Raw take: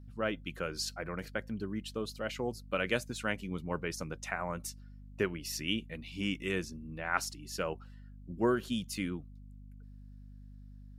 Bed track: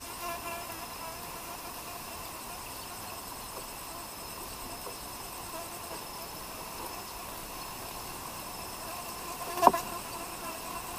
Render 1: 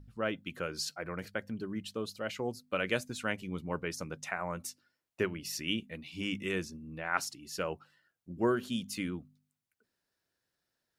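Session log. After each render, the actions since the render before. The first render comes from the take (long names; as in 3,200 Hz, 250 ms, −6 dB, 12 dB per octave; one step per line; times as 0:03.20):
hum removal 50 Hz, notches 5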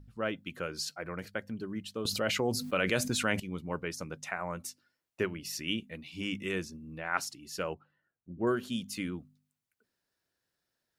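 0:02.05–0:03.40: envelope flattener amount 70%
0:07.74–0:08.47: head-to-tape spacing loss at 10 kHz 45 dB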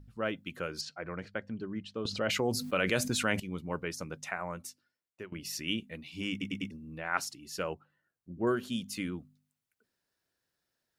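0:00.81–0:02.30: high-frequency loss of the air 120 metres
0:04.30–0:05.32: fade out, to −16.5 dB
0:06.31: stutter in place 0.10 s, 4 plays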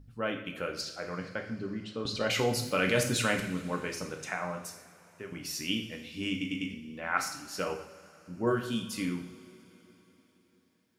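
coupled-rooms reverb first 0.59 s, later 4 s, from −19 dB, DRR 2 dB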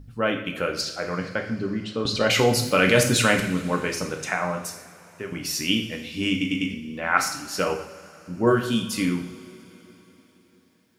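level +9 dB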